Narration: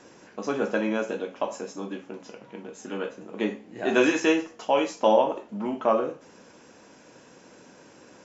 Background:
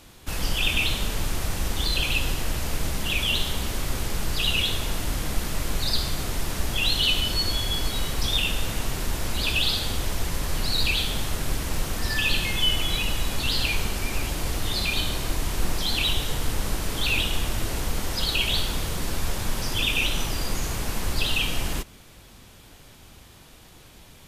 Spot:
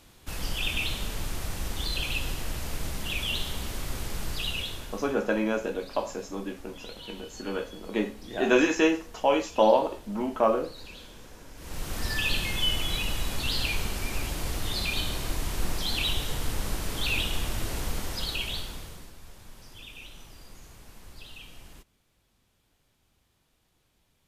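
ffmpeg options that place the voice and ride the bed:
-filter_complex "[0:a]adelay=4550,volume=-0.5dB[a];[1:a]volume=12.5dB,afade=t=out:st=4.29:d=0.87:silence=0.149624,afade=t=in:st=11.55:d=0.44:silence=0.11885,afade=t=out:st=17.89:d=1.24:silence=0.133352[b];[a][b]amix=inputs=2:normalize=0"

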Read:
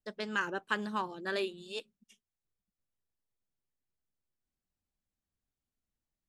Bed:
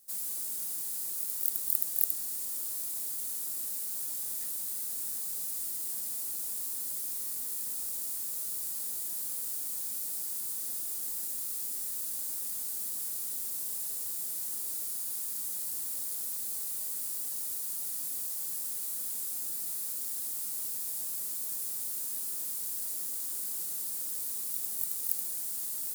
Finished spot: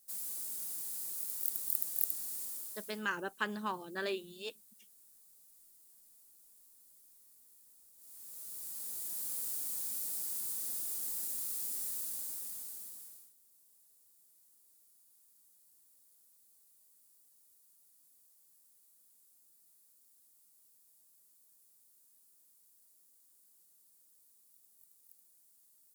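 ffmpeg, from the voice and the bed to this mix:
-filter_complex "[0:a]adelay=2700,volume=-3dB[a];[1:a]volume=19dB,afade=t=out:st=2.42:d=0.61:silence=0.0841395,afade=t=in:st=7.96:d=1.42:silence=0.0630957,afade=t=out:st=11.87:d=1.46:silence=0.0398107[b];[a][b]amix=inputs=2:normalize=0"

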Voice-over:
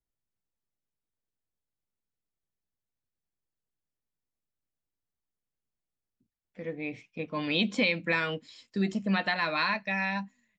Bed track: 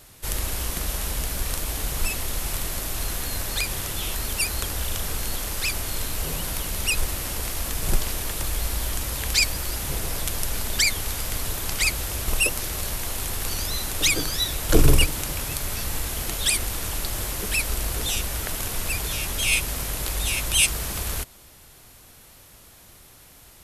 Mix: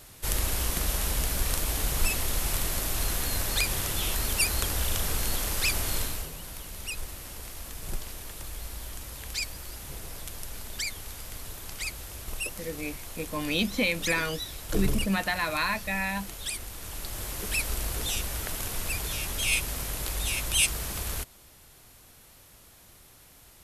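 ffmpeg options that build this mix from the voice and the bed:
-filter_complex "[0:a]adelay=6000,volume=0dB[a];[1:a]volume=7dB,afade=t=out:st=5.96:d=0.34:silence=0.266073,afade=t=in:st=16.75:d=0.82:silence=0.421697[b];[a][b]amix=inputs=2:normalize=0"

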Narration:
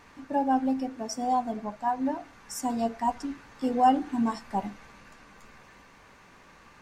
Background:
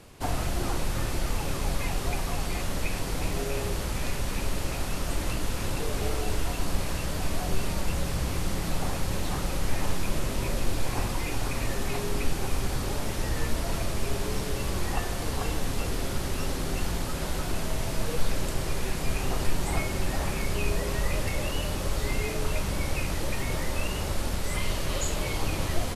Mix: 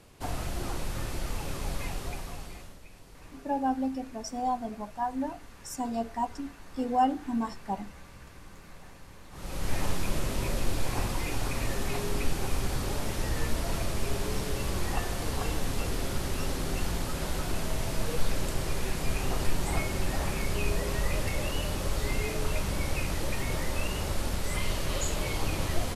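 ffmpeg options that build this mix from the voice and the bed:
-filter_complex "[0:a]adelay=3150,volume=-3.5dB[a];[1:a]volume=15dB,afade=t=out:st=1.84:d=0.95:silence=0.149624,afade=t=in:st=9.31:d=0.44:silence=0.1[b];[a][b]amix=inputs=2:normalize=0"

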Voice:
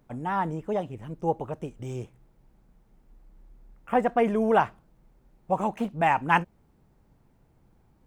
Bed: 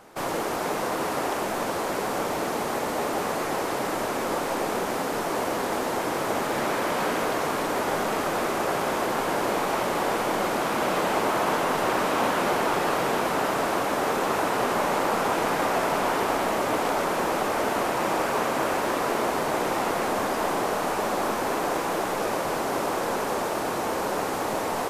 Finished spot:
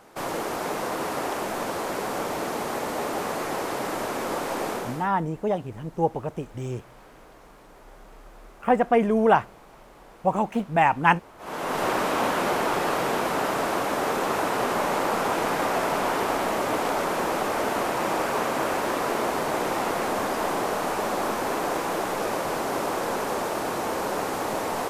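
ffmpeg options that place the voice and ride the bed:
-filter_complex "[0:a]adelay=4750,volume=3dB[a];[1:a]volume=23dB,afade=t=out:st=4.69:d=0.41:silence=0.0668344,afade=t=in:st=11.38:d=0.45:silence=0.0595662[b];[a][b]amix=inputs=2:normalize=0"

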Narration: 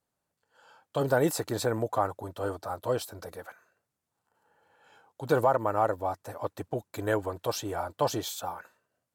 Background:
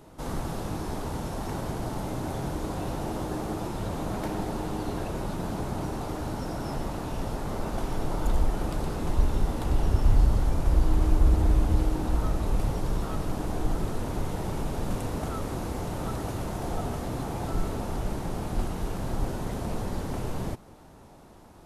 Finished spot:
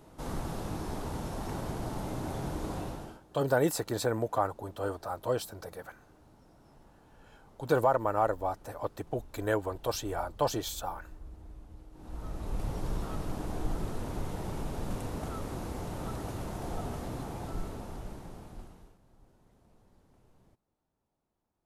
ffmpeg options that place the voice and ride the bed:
-filter_complex "[0:a]adelay=2400,volume=-1.5dB[a];[1:a]volume=17.5dB,afade=t=out:st=2.76:d=0.44:silence=0.0707946,afade=t=in:st=11.92:d=0.93:silence=0.0841395,afade=t=out:st=17.04:d=1.94:silence=0.0446684[b];[a][b]amix=inputs=2:normalize=0"

